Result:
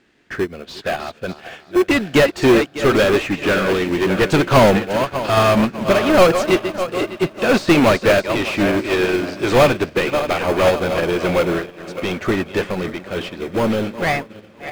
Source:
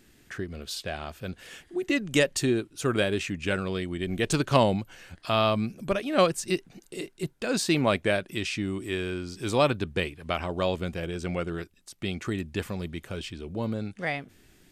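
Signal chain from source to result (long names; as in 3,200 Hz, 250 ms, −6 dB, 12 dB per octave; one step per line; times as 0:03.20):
feedback delay that plays each chunk backwards 300 ms, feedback 60%, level −12 dB
low-pass filter 7,500 Hz
high-shelf EQ 4,800 Hz −6.5 dB
mid-hump overdrive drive 32 dB, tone 2,400 Hz, clips at −8 dBFS
feedback delay with all-pass diffusion 1,613 ms, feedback 57%, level −15 dB
in parallel at −11 dB: sample-rate reduction 1,900 Hz, jitter 0%
on the sum: expander for the loud parts 2.5 to 1, over −27 dBFS
level +4.5 dB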